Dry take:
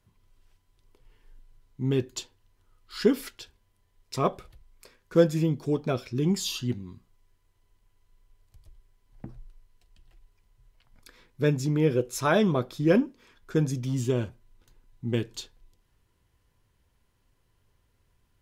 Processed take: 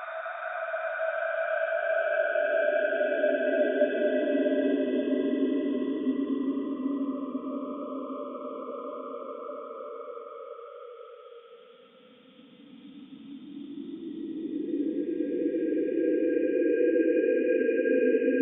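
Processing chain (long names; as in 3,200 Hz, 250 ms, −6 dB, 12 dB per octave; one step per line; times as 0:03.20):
three sine waves on the formant tracks
output level in coarse steps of 12 dB
extreme stretch with random phases 26×, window 0.25 s, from 0:12.24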